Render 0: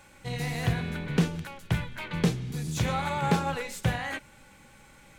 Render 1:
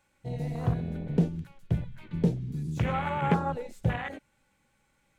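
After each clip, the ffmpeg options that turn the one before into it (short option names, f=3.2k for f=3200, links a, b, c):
-af "afwtdn=0.0251"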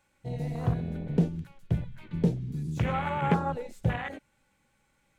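-af anull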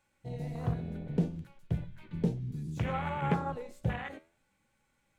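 -af "flanger=delay=7.9:depth=8.5:regen=82:speed=0.41:shape=triangular"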